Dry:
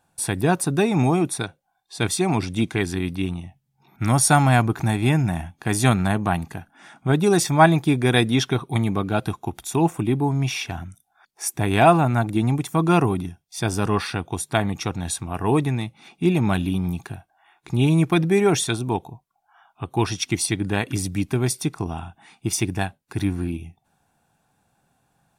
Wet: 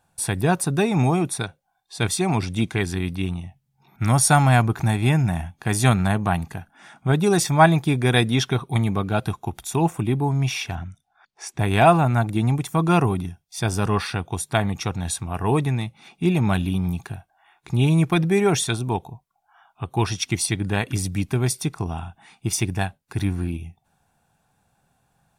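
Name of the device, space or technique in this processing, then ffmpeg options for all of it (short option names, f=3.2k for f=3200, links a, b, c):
low shelf boost with a cut just above: -filter_complex "[0:a]lowshelf=f=82:g=5.5,equalizer=f=300:t=o:w=0.6:g=-4.5,asettb=1/sr,asplit=3[a][b][c];[a]atrim=end=10.754[d];[b]atrim=start=10.75:end=11.59,asetpts=PTS-STARTPTS,afade=t=in:d=0.004:c=qsin,afade=t=out:st=0.836:d=0.004:c=qsin,lowpass=5.1k[e];[c]atrim=start=11.586[f];[d][e]acrossfade=d=0.004:c1=hsin:c2=qsin[g];[g][f]acrossfade=d=0.004:c1=qsin:c2=hsin"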